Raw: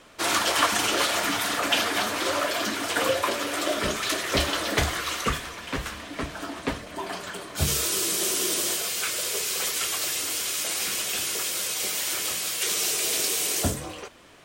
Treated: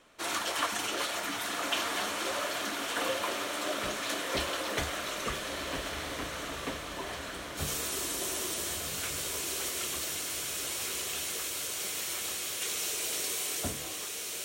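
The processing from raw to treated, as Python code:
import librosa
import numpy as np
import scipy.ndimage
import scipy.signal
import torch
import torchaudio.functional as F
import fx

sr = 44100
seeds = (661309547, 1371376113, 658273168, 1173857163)

p1 = fx.peak_eq(x, sr, hz=86.0, db=-3.5, octaves=2.1)
p2 = fx.notch(p1, sr, hz=4900.0, q=15.0)
p3 = p2 + fx.echo_diffused(p2, sr, ms=1356, feedback_pct=58, wet_db=-4, dry=0)
y = p3 * 10.0 ** (-9.0 / 20.0)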